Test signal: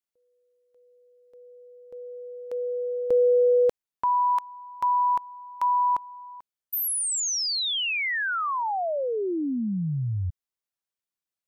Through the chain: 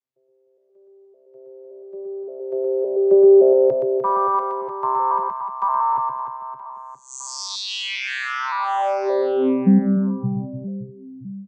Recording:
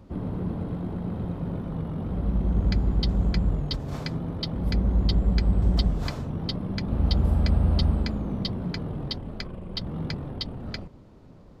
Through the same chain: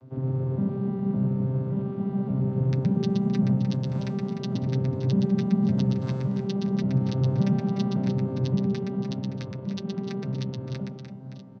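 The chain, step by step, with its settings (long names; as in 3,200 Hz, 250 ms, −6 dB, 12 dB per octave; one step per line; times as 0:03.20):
vocoder with an arpeggio as carrier bare fifth, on C3, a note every 568 ms
reverse bouncing-ball delay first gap 120 ms, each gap 1.5×, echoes 5
level +5.5 dB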